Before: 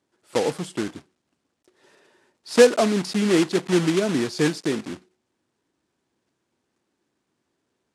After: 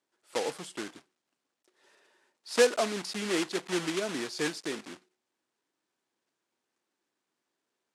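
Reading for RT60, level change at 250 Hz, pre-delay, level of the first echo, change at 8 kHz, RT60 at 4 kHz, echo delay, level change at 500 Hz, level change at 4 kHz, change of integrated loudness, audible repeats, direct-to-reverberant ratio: no reverb audible, −13.0 dB, no reverb audible, no echo audible, −5.0 dB, no reverb audible, no echo audible, −9.5 dB, −5.0 dB, −9.5 dB, no echo audible, no reverb audible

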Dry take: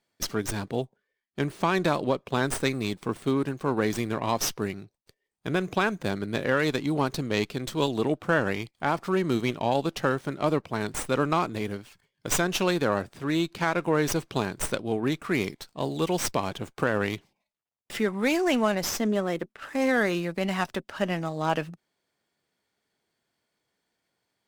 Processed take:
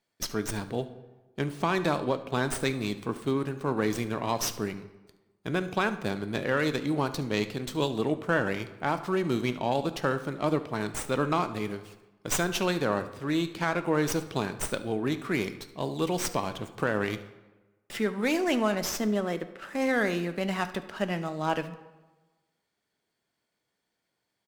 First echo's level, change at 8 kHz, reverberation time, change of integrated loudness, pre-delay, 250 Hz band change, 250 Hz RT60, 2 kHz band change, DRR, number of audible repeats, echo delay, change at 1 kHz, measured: −18.5 dB, −2.5 dB, 1.2 s, −2.0 dB, 4 ms, −2.0 dB, 1.2 s, −2.0 dB, 10.5 dB, 1, 72 ms, −2.0 dB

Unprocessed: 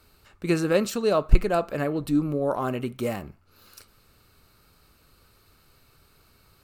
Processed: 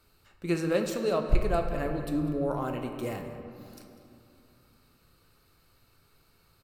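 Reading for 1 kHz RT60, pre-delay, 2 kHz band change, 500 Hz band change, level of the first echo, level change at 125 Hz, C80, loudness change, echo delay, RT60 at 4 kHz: 2.7 s, 6 ms, −5.0 dB, −4.5 dB, −16.5 dB, −4.0 dB, 7.0 dB, −5.0 dB, 197 ms, 1.4 s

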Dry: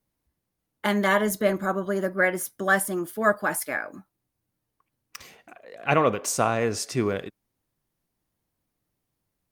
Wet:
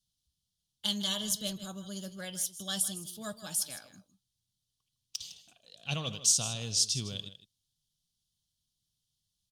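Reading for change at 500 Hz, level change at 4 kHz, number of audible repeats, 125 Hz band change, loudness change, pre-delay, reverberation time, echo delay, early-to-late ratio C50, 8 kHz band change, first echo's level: −21.0 dB, +6.0 dB, 1, −7.0 dB, −7.0 dB, no reverb audible, no reverb audible, 157 ms, no reverb audible, +3.0 dB, −14.0 dB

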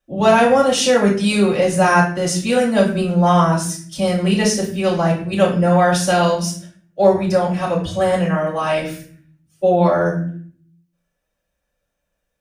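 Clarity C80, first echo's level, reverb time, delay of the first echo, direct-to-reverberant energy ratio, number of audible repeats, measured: 10.5 dB, no echo audible, 0.55 s, no echo audible, −7.0 dB, no echo audible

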